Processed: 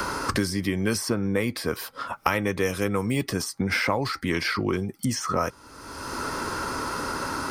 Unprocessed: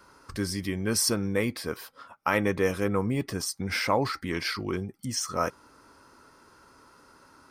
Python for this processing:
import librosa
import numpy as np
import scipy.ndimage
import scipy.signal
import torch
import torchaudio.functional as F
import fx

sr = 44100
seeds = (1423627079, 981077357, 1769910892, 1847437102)

y = fx.band_squash(x, sr, depth_pct=100)
y = F.gain(torch.from_numpy(y), 2.5).numpy()